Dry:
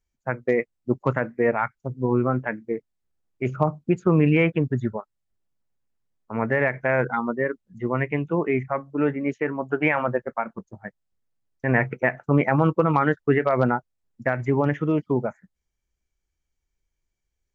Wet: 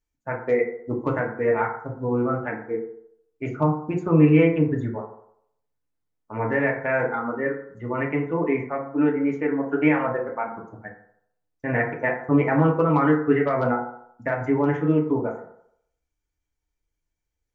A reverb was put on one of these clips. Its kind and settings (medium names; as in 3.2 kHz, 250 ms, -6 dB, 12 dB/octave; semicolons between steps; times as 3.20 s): FDN reverb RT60 0.7 s, low-frequency decay 0.75×, high-frequency decay 0.35×, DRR -1 dB; trim -4.5 dB